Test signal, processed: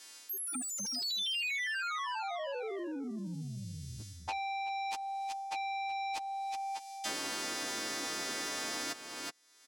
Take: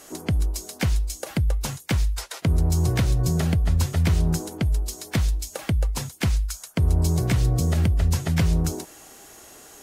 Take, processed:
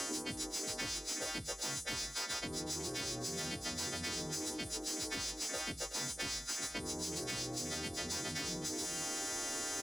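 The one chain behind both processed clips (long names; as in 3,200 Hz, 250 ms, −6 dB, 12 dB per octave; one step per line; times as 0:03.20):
every partial snapped to a pitch grid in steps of 2 semitones
low-pass filter 9,100 Hz 12 dB per octave
parametric band 5,400 Hz +4 dB 0.78 octaves
mid-hump overdrive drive 18 dB, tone 5,700 Hz, clips at −7.5 dBFS
parametric band 290 Hz +13.5 dB 1.1 octaves
brickwall limiter −11.5 dBFS
reversed playback
downward compressor 10 to 1, threshold −28 dBFS
reversed playback
high-pass filter 180 Hz 6 dB per octave
soft clipping −26 dBFS
on a send: single-tap delay 371 ms −12 dB
on the sum: multiband upward and downward compressor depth 100%
level −7.5 dB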